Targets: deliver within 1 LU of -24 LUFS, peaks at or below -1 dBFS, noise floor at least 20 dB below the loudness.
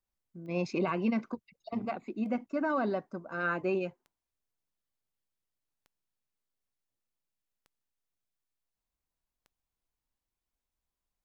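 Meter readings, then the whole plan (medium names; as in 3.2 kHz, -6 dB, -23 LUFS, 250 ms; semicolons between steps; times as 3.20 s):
clicks found 6; loudness -33.5 LUFS; peak level -20.0 dBFS; loudness target -24.0 LUFS
-> de-click; trim +9.5 dB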